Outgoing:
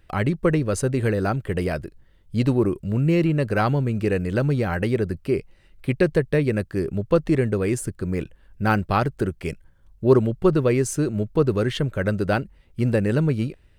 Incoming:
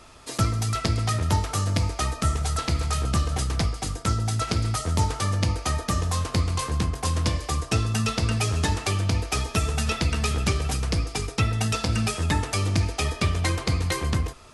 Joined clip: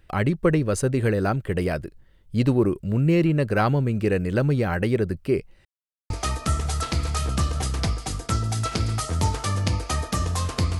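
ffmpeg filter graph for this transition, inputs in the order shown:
-filter_complex "[0:a]apad=whole_dur=10.79,atrim=end=10.79,asplit=2[a][b];[a]atrim=end=5.65,asetpts=PTS-STARTPTS,afade=t=out:st=5.646:d=0.004:c=hsin[c];[b]atrim=start=5.65:end=6.1,asetpts=PTS-STARTPTS,volume=0[d];[1:a]atrim=start=1.86:end=6.55,asetpts=PTS-STARTPTS,afade=t=in:d=0.004:c=hsin[e];[c][d][e]concat=n=3:v=0:a=1"

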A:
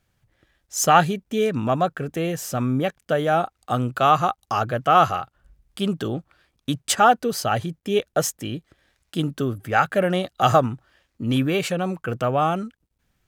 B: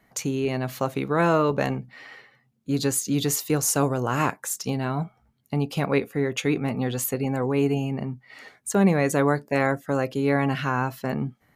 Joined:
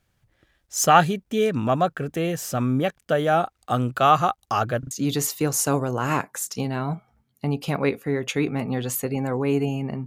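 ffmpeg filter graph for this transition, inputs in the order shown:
-filter_complex "[0:a]apad=whole_dur=10.06,atrim=end=10.06,asplit=3[a][b][c];[a]atrim=end=4.832[d];[b]atrim=start=4.788:end=4.832[e];[c]atrim=start=4.788:end=4.832[f];[1:a]atrim=start=2.998:end=8.15[g];[d][e]acrossfade=d=0.004:c1=hsin:c2=hsin[h];[h][f]acrossfade=d=0.004:c1=hsin:c2=hsin[i];[i][g]acrossfade=d=0.004:c1=hsin:c2=hsin"

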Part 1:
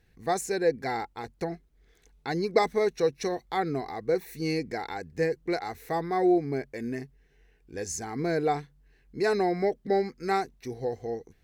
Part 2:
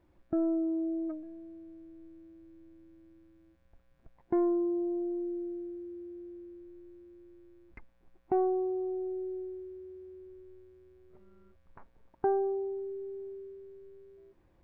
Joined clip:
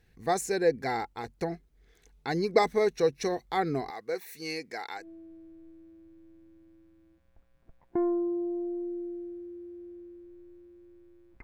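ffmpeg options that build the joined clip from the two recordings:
-filter_complex "[0:a]asettb=1/sr,asplit=3[a][b][c];[a]atrim=end=3.904[d];[b]atrim=start=3.9:end=5.08,asetpts=PTS-STARTPTS,afade=t=in:d=0.004:c=qsin,afade=t=out:st=1.176:d=0.004:c=qsin,highpass=f=970:p=1[e];[c]atrim=start=5.076[f];[d][e]acrossfade=d=0.004:c1=hsin:c2=qsin[g];[g][f]acrossfade=d=0.004:c1=qsin:c2=hsin,apad=whole_dur=11.43,atrim=end=11.43,atrim=end=5.08,asetpts=PTS-STARTPTS[h];[1:a]atrim=start=1.33:end=7.8,asetpts=PTS-STARTPTS[i];[h][i]acrossfade=d=0.12:c1=tri:c2=tri"

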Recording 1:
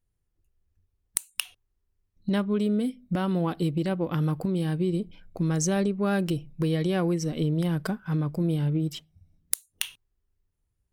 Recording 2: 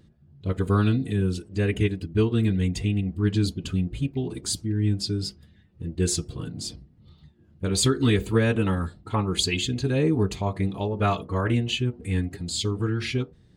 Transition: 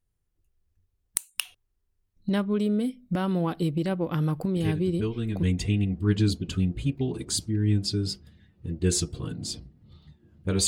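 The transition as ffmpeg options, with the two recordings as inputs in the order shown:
-filter_complex "[1:a]asplit=2[a][b];[0:a]apad=whole_dur=10.67,atrim=end=10.67,atrim=end=5.432[c];[b]atrim=start=2.588:end=7.83[d];[a]atrim=start=1.72:end=2.59,asetpts=PTS-STARTPTS,volume=-7.5dB,afade=t=in:d=0.004:c=hsin,afade=t=out:st=0.866:d=0.004:c=hsin,adelay=4560[e];[c][d]acrossfade=d=0.004:c1=hsin:c2=hsin[f];[f][e]amix=inputs=2:normalize=0"

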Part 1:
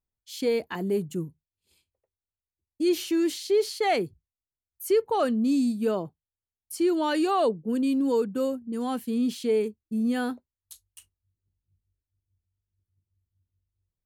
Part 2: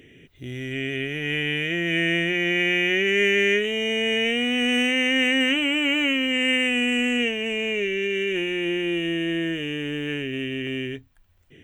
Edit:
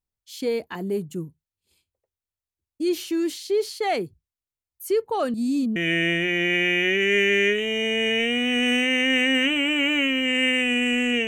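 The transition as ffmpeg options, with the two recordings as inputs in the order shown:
-filter_complex "[0:a]apad=whole_dur=11.27,atrim=end=11.27,asplit=2[a][b];[a]atrim=end=5.342[c];[b]atrim=start=5.338:end=5.762,asetpts=PTS-STARTPTS,areverse[d];[1:a]atrim=start=1.818:end=7.33[e];[c][d]acrossfade=d=0.004:c1=hsin:c2=hsin[f];[f][e]acrossfade=d=0.004:c1=hsin:c2=hsin"

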